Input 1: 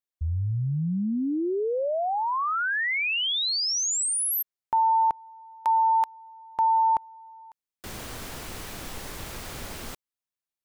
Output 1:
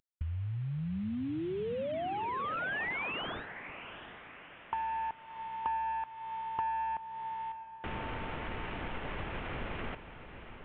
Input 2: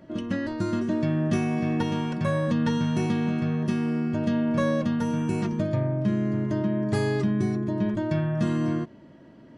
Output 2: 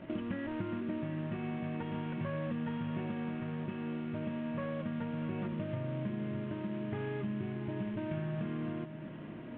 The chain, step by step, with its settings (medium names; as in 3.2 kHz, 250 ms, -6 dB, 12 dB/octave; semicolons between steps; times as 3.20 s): CVSD coder 16 kbps; compression 12:1, threshold -36 dBFS; on a send: echo that smears into a reverb 719 ms, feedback 50%, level -11 dB; on the sum: trim +2 dB